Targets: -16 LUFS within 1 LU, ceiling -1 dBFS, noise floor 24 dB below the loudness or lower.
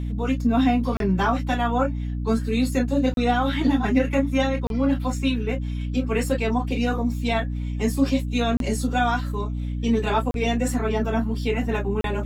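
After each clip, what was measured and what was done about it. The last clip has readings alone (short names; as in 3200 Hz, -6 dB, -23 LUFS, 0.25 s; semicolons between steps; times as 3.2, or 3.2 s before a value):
dropouts 6; longest dropout 32 ms; hum 60 Hz; harmonics up to 300 Hz; hum level -25 dBFS; loudness -23.5 LUFS; peak -8.0 dBFS; loudness target -16.0 LUFS
-> interpolate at 0.97/3.14/4.67/8.57/10.31/12.01, 32 ms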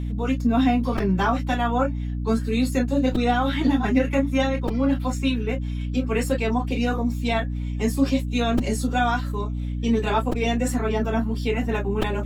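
dropouts 0; hum 60 Hz; harmonics up to 300 Hz; hum level -25 dBFS
-> notches 60/120/180/240/300 Hz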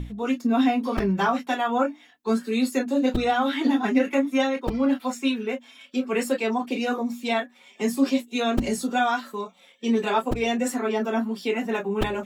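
hum none; loudness -25.0 LUFS; peak -8.0 dBFS; loudness target -16.0 LUFS
-> gain +9 dB; limiter -1 dBFS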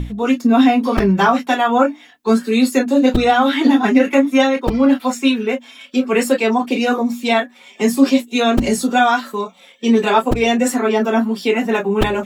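loudness -16.0 LUFS; peak -1.0 dBFS; noise floor -46 dBFS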